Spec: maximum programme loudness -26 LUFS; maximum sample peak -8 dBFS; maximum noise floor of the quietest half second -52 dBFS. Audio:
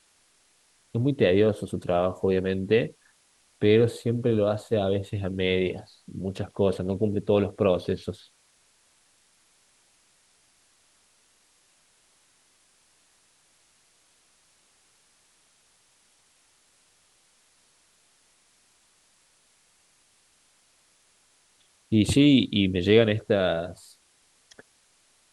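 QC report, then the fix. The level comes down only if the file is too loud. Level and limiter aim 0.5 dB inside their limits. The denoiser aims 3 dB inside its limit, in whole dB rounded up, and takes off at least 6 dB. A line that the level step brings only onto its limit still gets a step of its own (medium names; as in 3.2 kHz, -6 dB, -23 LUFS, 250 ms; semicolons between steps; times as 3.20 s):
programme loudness -24.5 LUFS: fail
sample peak -5.5 dBFS: fail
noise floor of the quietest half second -64 dBFS: pass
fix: trim -2 dB; peak limiter -8.5 dBFS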